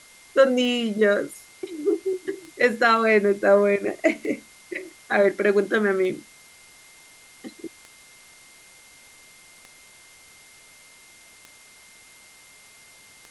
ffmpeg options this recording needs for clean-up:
-af "adeclick=t=4,bandreject=f=2.1k:w=30,afwtdn=0.0035"

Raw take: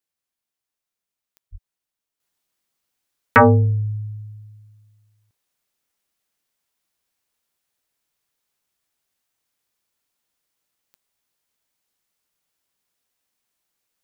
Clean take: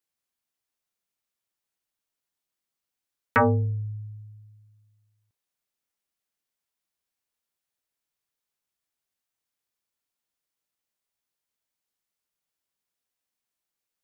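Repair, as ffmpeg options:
-filter_complex "[0:a]adeclick=t=4,asplit=3[a][b][c];[a]afade=t=out:st=1.51:d=0.02[d];[b]highpass=f=140:w=0.5412,highpass=f=140:w=1.3066,afade=t=in:st=1.51:d=0.02,afade=t=out:st=1.63:d=0.02[e];[c]afade=t=in:st=1.63:d=0.02[f];[d][e][f]amix=inputs=3:normalize=0,asetnsamples=n=441:p=0,asendcmd='2.2 volume volume -8.5dB',volume=0dB"

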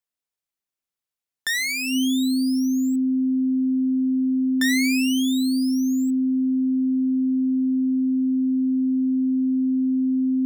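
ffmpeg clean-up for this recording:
-af "bandreject=f=260:w=30"

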